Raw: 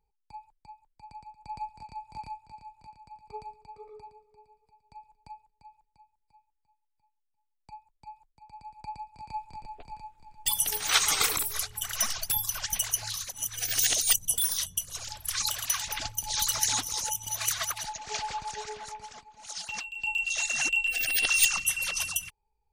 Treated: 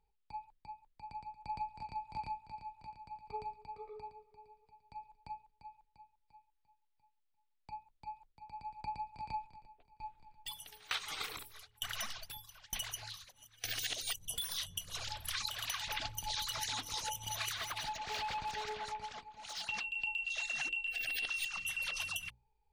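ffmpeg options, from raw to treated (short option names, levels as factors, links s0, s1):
-filter_complex "[0:a]asplit=3[s0][s1][s2];[s0]afade=t=out:st=9.46:d=0.02[s3];[s1]aeval=exprs='val(0)*pow(10,-25*if(lt(mod(1.1*n/s,1),2*abs(1.1)/1000),1-mod(1.1*n/s,1)/(2*abs(1.1)/1000),(mod(1.1*n/s,1)-2*abs(1.1)/1000)/(1-2*abs(1.1)/1000))/20)':c=same,afade=t=in:st=9.46:d=0.02,afade=t=out:st=13.84:d=0.02[s4];[s2]afade=t=in:st=13.84:d=0.02[s5];[s3][s4][s5]amix=inputs=3:normalize=0,asettb=1/sr,asplit=3[s6][s7][s8];[s6]atrim=end=17.564[s9];[s7]atrim=start=17.56:end=19.69,asetpts=PTS-STARTPTS,afade=t=in:d=0.004:c=qsin,afade=t=out:st=2.126:d=0.004:c=qsin,volume=53.1,asoftclip=hard,volume=0.0188[s10];[s8]atrim=start=19.686[s11];[s9][s10]acrossfade=d=0.004:c1=hsin:c2=qsin[s12];[s12][s11]acrossfade=d=0.004:c1=qsin:c2=hsin,highshelf=f=5000:t=q:w=1.5:g=-8,bandreject=f=60:t=h:w=6,bandreject=f=120:t=h:w=6,bandreject=f=180:t=h:w=6,bandreject=f=240:t=h:w=6,bandreject=f=300:t=h:w=6,bandreject=f=360:t=h:w=6,bandreject=f=420:t=h:w=6,bandreject=f=480:t=h:w=6,bandreject=f=540:t=h:w=6,acompressor=threshold=0.0178:ratio=12"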